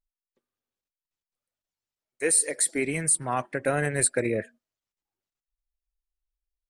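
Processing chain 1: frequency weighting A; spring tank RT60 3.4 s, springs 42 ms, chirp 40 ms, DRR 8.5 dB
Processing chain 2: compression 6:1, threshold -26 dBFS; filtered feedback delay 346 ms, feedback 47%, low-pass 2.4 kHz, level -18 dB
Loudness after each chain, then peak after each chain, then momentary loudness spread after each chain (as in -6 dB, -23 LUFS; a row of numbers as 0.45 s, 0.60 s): -26.5 LUFS, -30.5 LUFS; -8.5 dBFS, -14.5 dBFS; 16 LU, 7 LU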